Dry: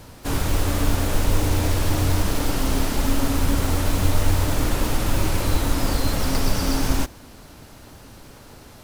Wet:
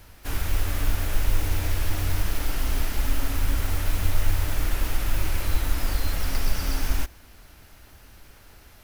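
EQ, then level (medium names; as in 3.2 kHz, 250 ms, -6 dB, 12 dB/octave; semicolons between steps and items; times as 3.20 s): graphic EQ 125/250/500/1000/4000/8000 Hz -10/-10/-8/-7/-5/-7 dB; 0.0 dB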